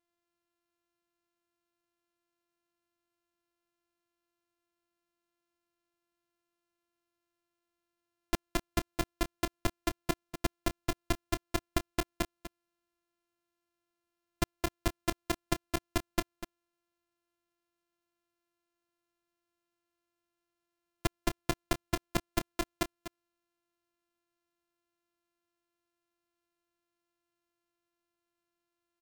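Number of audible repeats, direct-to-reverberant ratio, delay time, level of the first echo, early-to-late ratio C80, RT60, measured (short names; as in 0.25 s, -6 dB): 1, none, 0.246 s, -12.0 dB, none, none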